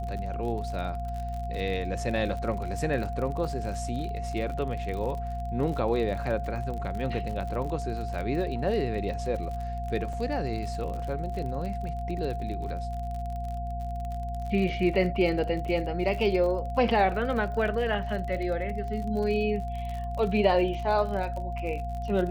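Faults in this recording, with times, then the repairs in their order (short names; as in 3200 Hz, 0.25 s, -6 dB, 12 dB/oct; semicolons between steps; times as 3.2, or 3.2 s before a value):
crackle 45/s -34 dBFS
hum 60 Hz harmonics 4 -34 dBFS
tone 700 Hz -35 dBFS
10.13 gap 4.1 ms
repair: de-click; notch 700 Hz, Q 30; de-hum 60 Hz, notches 4; interpolate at 10.13, 4.1 ms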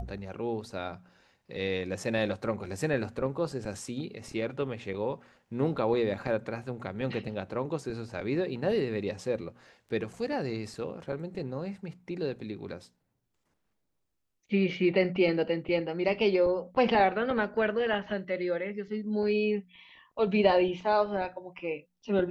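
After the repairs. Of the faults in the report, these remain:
none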